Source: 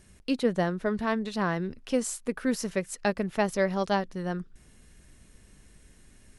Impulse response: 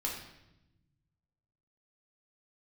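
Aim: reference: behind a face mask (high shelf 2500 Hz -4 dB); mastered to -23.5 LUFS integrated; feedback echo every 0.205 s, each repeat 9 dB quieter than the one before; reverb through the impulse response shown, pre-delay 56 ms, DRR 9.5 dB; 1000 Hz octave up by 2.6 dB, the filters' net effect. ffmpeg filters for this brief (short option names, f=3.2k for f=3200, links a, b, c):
-filter_complex "[0:a]equalizer=f=1k:t=o:g=4,aecho=1:1:205|410|615|820:0.355|0.124|0.0435|0.0152,asplit=2[a][b];[1:a]atrim=start_sample=2205,adelay=56[c];[b][c]afir=irnorm=-1:irlink=0,volume=-12.5dB[d];[a][d]amix=inputs=2:normalize=0,highshelf=f=2.5k:g=-4,volume=4.5dB"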